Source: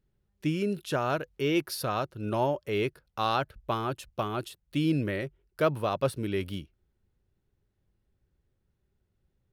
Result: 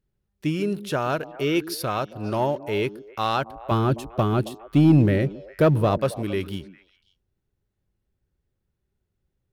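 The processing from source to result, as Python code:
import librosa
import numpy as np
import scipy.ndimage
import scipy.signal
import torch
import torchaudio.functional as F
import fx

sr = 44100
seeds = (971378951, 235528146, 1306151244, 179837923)

y = fx.low_shelf(x, sr, hz=430.0, db=12.0, at=(3.71, 5.98))
y = fx.leveller(y, sr, passes=1)
y = fx.echo_stepped(y, sr, ms=135, hz=250.0, octaves=1.4, feedback_pct=70, wet_db=-11)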